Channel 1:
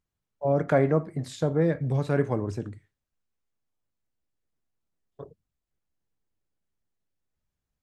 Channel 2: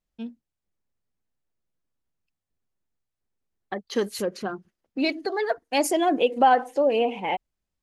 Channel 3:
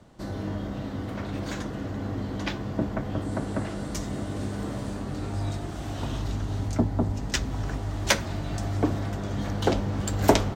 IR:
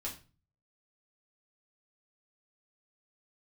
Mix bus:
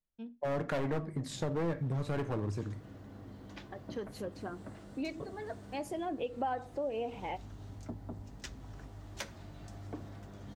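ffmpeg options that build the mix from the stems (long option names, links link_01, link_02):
-filter_complex "[0:a]agate=range=-33dB:threshold=-39dB:ratio=3:detection=peak,asoftclip=type=hard:threshold=-24dB,volume=0dB,asplit=3[link_01][link_02][link_03];[link_02]volume=-10dB[link_04];[1:a]highshelf=frequency=2800:gain=-8.5,volume=-9.5dB,asplit=2[link_05][link_06];[link_06]volume=-15dB[link_07];[2:a]acrusher=bits=8:mix=0:aa=0.5,adelay=1100,volume=-18dB[link_08];[link_03]apad=whole_len=345032[link_09];[link_05][link_09]sidechaincompress=threshold=-46dB:ratio=8:attack=16:release=1400[link_10];[3:a]atrim=start_sample=2205[link_11];[link_04][link_07]amix=inputs=2:normalize=0[link_12];[link_12][link_11]afir=irnorm=-1:irlink=0[link_13];[link_01][link_10][link_08][link_13]amix=inputs=4:normalize=0,acompressor=threshold=-37dB:ratio=2"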